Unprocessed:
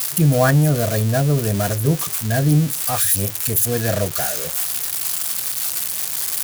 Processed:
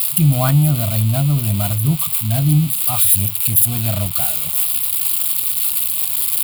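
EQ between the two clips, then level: low shelf 250 Hz +8.5 dB; high shelf 2000 Hz +10 dB; fixed phaser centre 1700 Hz, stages 6; -3.0 dB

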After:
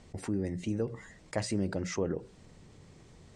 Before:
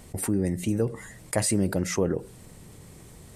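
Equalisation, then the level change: LPF 6600 Hz 24 dB/oct; notches 60/120/180 Hz; -6.5 dB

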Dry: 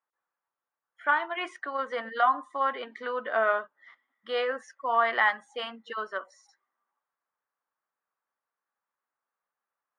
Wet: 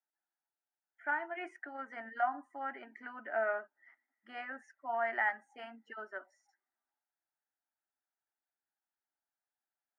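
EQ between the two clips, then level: brick-wall FIR high-pass 160 Hz; high shelf 2700 Hz -8.5 dB; fixed phaser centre 740 Hz, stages 8; -5.0 dB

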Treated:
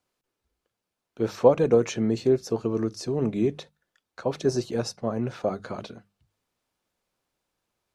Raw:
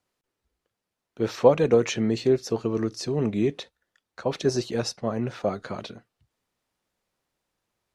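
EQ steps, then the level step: notches 50/100/150/200 Hz; notch 1900 Hz, Q 17; dynamic EQ 3100 Hz, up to -6 dB, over -44 dBFS, Q 0.7; 0.0 dB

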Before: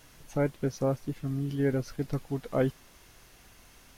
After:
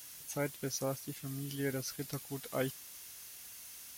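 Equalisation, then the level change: HPF 63 Hz; pre-emphasis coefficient 0.9; +10.0 dB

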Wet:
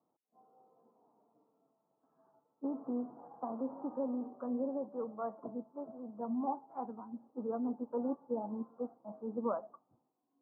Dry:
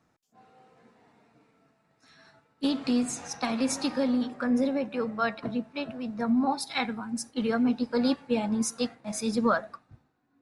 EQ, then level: HPF 280 Hz 12 dB/oct; steep low-pass 1100 Hz 48 dB/oct; -7.5 dB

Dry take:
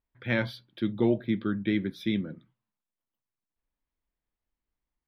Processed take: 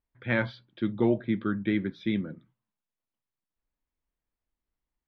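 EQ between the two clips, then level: dynamic EQ 1200 Hz, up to +5 dB, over -45 dBFS, Q 0.98; air absorption 180 m; 0.0 dB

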